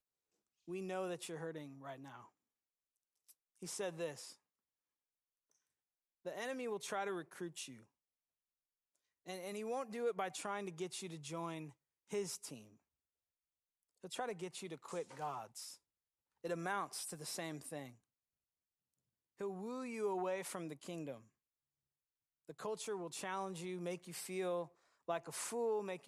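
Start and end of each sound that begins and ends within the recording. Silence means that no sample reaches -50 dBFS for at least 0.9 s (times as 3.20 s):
3.31–4.32 s
6.26–7.76 s
9.27–12.61 s
14.04–17.90 s
19.40–21.17 s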